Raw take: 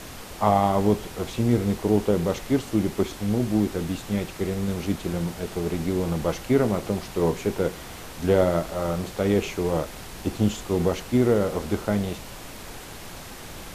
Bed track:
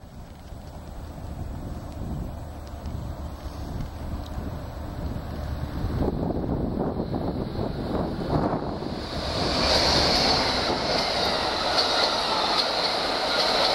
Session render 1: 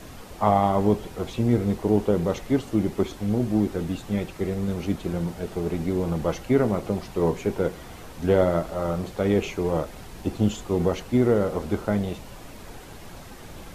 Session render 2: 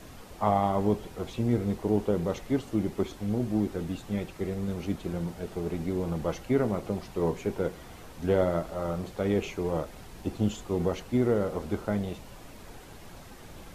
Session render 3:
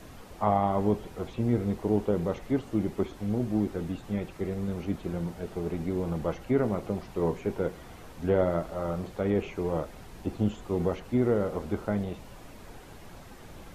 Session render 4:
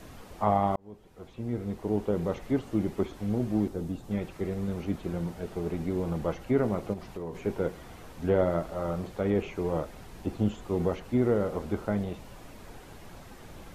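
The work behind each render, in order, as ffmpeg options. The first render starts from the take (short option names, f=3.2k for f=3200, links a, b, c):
-af "afftdn=nr=7:nf=-40"
-af "volume=-5dB"
-filter_complex "[0:a]acrossover=split=2600[a][b];[b]acompressor=threshold=-55dB:ratio=4:attack=1:release=60[c];[a][c]amix=inputs=2:normalize=0"
-filter_complex "[0:a]asettb=1/sr,asplit=3[a][b][c];[a]atrim=end=3.684[d];[b]atrim=start=3.68:end=4.11,asetpts=PTS-STARTPTS,afade=t=in:d=0.004:c=qsin,afade=t=out:st=0.426:d=0.004:c=qsin,equalizer=f=2k:w=0.67:g=-9[e];[c]atrim=start=4.106[f];[d][e]acrossfade=d=0.004:c1=hsin:c2=qsin[g];[g][f]acrossfade=d=0.004:c1=qsin:c2=hsin,asettb=1/sr,asplit=3[h][i][j];[h]atrim=end=6.934[k];[i]atrim=start=6.93:end=7.35,asetpts=PTS-STARTPTS,afade=t=in:d=0.004:c=qsin,afade=t=out:st=0.416:d=0.004:c=qsin,acompressor=threshold=-34dB:ratio=4:attack=3.2:release=140:knee=1:detection=peak[l];[j]atrim=start=7.346[m];[k][l]acrossfade=d=0.004:c1=hsin:c2=qsin[n];[n][m]acrossfade=d=0.004:c1=qsin:c2=hsin,asplit=2[o][p];[o]atrim=end=0.76,asetpts=PTS-STARTPTS,afade=t=out:st=0.756:d=0.004:c=hsin[q];[p]atrim=start=0.76,asetpts=PTS-STARTPTS,afade=t=in:d=1.6[r];[q][r]concat=n=2:v=0:a=1"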